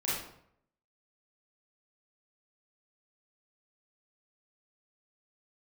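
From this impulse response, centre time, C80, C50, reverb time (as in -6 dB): 64 ms, 4.5 dB, -0.5 dB, 0.70 s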